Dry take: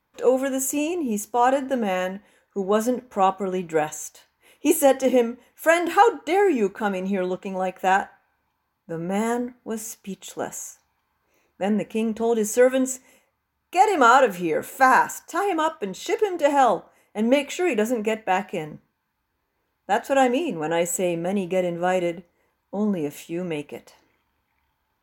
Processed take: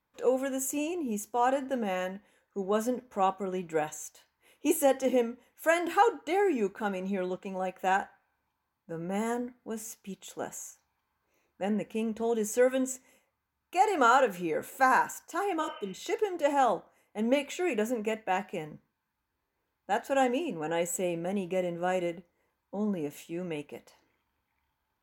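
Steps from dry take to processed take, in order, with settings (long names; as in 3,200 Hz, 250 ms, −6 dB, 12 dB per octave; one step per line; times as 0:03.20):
healed spectral selection 0:15.64–0:15.97, 460–3,100 Hz both
level −7.5 dB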